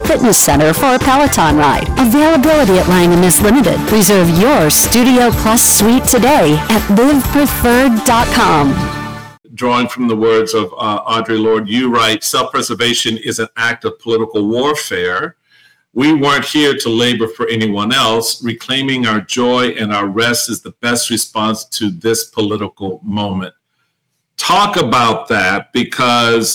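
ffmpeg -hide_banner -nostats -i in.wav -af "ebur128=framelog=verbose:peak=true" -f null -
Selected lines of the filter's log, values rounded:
Integrated loudness:
  I:         -11.6 LUFS
  Threshold: -21.9 LUFS
Loudness range:
  LRA:         7.1 LU
  Threshold: -32.1 LUFS
  LRA low:   -15.8 LUFS
  LRA high:   -8.6 LUFS
True peak:
  Peak:       -2.0 dBFS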